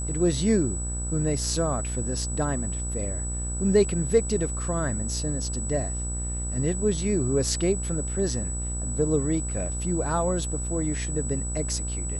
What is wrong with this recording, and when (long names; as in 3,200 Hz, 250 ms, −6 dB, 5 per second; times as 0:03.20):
mains buzz 60 Hz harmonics 27 −31 dBFS
whistle 7,900 Hz −33 dBFS